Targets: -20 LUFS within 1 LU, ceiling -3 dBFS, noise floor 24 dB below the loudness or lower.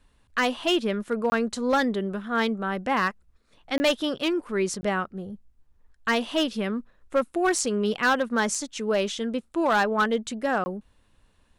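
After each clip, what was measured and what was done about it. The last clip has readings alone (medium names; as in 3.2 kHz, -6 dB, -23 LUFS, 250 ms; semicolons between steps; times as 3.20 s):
clipped samples 0.7%; clipping level -16.0 dBFS; dropouts 4; longest dropout 20 ms; loudness -26.0 LUFS; peak level -16.0 dBFS; loudness target -20.0 LUFS
-> clip repair -16 dBFS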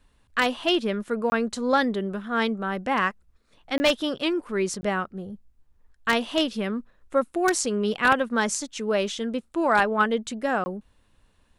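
clipped samples 0.0%; dropouts 4; longest dropout 20 ms
-> interpolate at 1.30/3.78/4.81/10.64 s, 20 ms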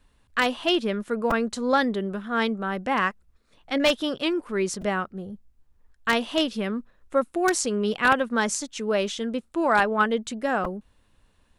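dropouts 0; loudness -25.0 LUFS; peak level -7.0 dBFS; loudness target -20.0 LUFS
-> trim +5 dB; peak limiter -3 dBFS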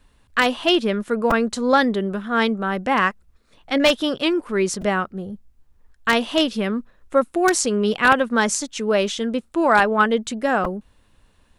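loudness -20.5 LUFS; peak level -3.0 dBFS; noise floor -59 dBFS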